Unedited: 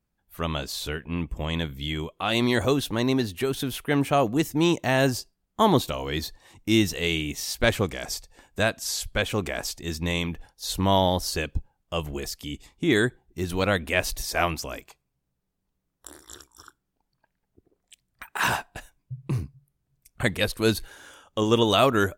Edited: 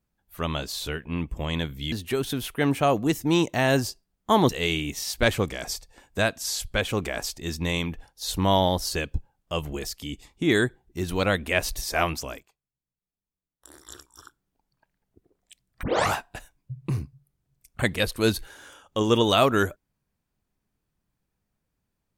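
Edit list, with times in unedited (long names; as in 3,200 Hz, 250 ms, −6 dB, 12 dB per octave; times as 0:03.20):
0:01.92–0:03.22: remove
0:05.79–0:06.90: remove
0:14.70–0:16.20: duck −15.5 dB, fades 0.19 s
0:18.24: tape start 0.31 s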